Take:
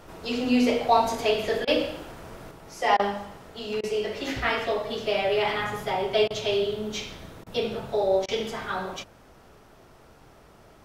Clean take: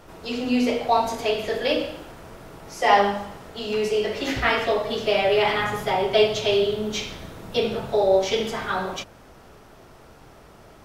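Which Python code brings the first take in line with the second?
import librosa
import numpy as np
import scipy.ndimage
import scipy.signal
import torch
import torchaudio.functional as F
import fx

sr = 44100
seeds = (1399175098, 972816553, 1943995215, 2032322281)

y = fx.fix_interpolate(x, sr, at_s=(1.65, 2.97, 3.81, 6.28, 7.44, 8.26), length_ms=23.0)
y = fx.fix_level(y, sr, at_s=2.51, step_db=4.5)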